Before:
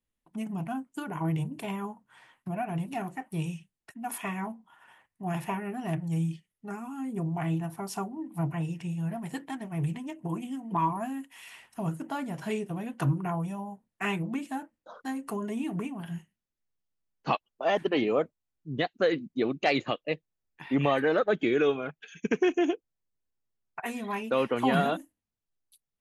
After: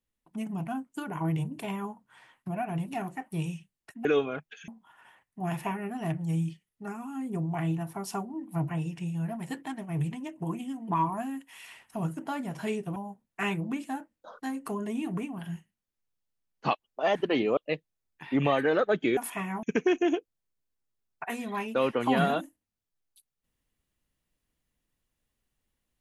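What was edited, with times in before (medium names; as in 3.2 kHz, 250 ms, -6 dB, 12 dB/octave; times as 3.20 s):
4.05–4.51 s: swap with 21.56–22.19 s
12.79–13.58 s: delete
18.19–19.96 s: delete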